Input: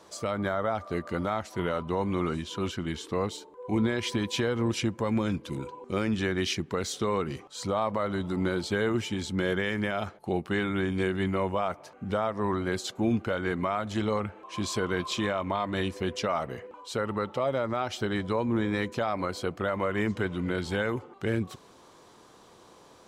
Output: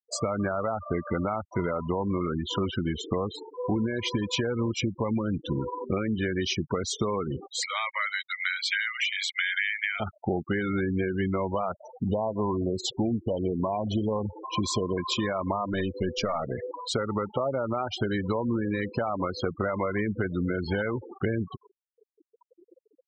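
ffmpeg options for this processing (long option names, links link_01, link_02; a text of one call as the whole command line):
ffmpeg -i in.wav -filter_complex "[0:a]asettb=1/sr,asplit=3[link_01][link_02][link_03];[link_01]atrim=end=7.604[link_04];[link_02]atrim=start=7.6:end=10,asetpts=PTS-STARTPTS,afade=type=in:duration=0.004:curve=qsin,afade=type=out:start_time=2.396:duration=0.004:curve=qsin,highpass=frequency=2100:width_type=q:width=3.3[link_05];[link_03]atrim=start=9.996[link_06];[link_04][link_05]acrossfade=duration=0.004:curve1=hsin:curve2=qsin[link_07];[link_07][link_06]acrossfade=duration=0.004:curve1=qsin:curve2=hsin,asettb=1/sr,asplit=3[link_08][link_09][link_10];[link_08]atrim=end=11.824[link_11];[link_09]atrim=start=11.82:end=14.98,asetpts=PTS-STARTPTS,afade=type=in:duration=0.004:curve=qsin,afade=type=out:start_time=3.156:duration=0.004:curve=qsin,asuperstop=centerf=1600:order=20:qfactor=1.3[link_12];[link_10]atrim=start=14.976[link_13];[link_11][link_12]acrossfade=duration=0.004:curve1=hsin:curve2=qsin[link_14];[link_14][link_13]acrossfade=duration=0.004:curve1=qsin:curve2=hsin,asettb=1/sr,asplit=3[link_15][link_16][link_17];[link_15]atrim=end=15.724[link_18];[link_16]atrim=start=15.72:end=16.61,asetpts=PTS-STARTPTS,afade=type=in:duration=0.004:curve=qsin,afade=type=out:start_time=0.886:duration=0.004:curve=qsin,aeval=exprs='(tanh(11.2*val(0)+0.45)-tanh(0.45))/11.2':channel_layout=same[link_19];[link_17]atrim=start=16.606[link_20];[link_18][link_19]acrossfade=duration=0.004:curve1=hsin:curve2=qsin[link_21];[link_21][link_20]acrossfade=duration=0.004:curve1=qsin:curve2=hsin,acompressor=threshold=-34dB:ratio=8,afftfilt=real='re*gte(hypot(re,im),0.0126)':imag='im*gte(hypot(re,im),0.0126)':win_size=1024:overlap=0.75,acontrast=76,volume=3dB" out.wav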